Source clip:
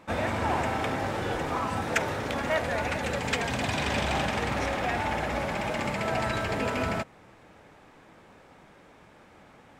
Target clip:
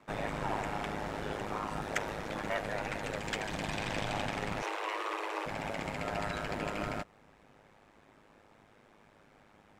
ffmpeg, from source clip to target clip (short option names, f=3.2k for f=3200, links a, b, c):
-filter_complex "[0:a]aeval=exprs='val(0)*sin(2*PI*52*n/s)':c=same,asettb=1/sr,asplit=3[a][b][c];[a]atrim=end=4.624[d];[b]atrim=start=4.62:end=5.46,asetpts=PTS-STARTPTS,afade=t=in:d=0.004:c=qsin,afade=t=out:st=0.836:d=0.004:c=qsin,afreqshift=310[e];[c]atrim=start=5.456[f];[d][e]acrossfade=d=0.004:c1=hsin:c2=qsin[g];[g][f]acrossfade=d=0.004:c1=qsin:c2=hsin,volume=-4.5dB"